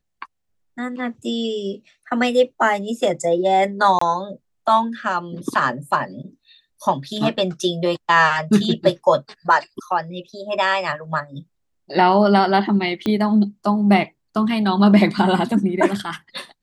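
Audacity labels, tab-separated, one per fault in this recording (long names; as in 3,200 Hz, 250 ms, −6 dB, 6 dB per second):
3.990000	4.010000	drop-out 24 ms
13.060000	13.060000	click −11 dBFS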